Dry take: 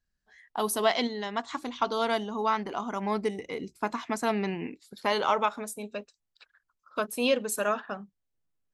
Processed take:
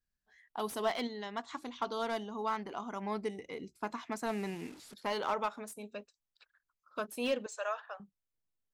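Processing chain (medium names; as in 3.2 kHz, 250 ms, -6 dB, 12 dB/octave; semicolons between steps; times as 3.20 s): 4.26–4.94 s: one-bit delta coder 64 kbps, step -40.5 dBFS; 7.46–8.00 s: Chebyshev band-pass 520–7200 Hz, order 4; slew-rate limiter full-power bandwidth 140 Hz; trim -7.5 dB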